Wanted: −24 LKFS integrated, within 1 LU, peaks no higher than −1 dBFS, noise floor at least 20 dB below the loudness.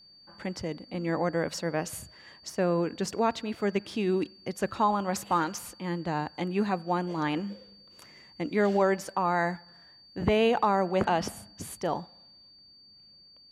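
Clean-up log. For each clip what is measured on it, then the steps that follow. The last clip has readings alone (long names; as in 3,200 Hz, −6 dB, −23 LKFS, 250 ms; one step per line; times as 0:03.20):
interfering tone 4,600 Hz; level of the tone −53 dBFS; integrated loudness −29.5 LKFS; sample peak −13.0 dBFS; target loudness −24.0 LKFS
→ notch filter 4,600 Hz, Q 30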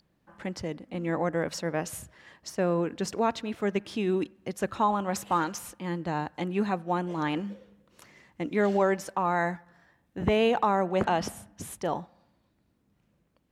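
interfering tone none found; integrated loudness −29.5 LKFS; sample peak −13.0 dBFS; target loudness −24.0 LKFS
→ level +5.5 dB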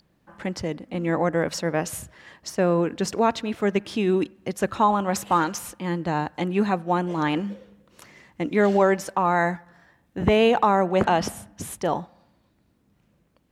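integrated loudness −24.0 LKFS; sample peak −7.5 dBFS; background noise floor −66 dBFS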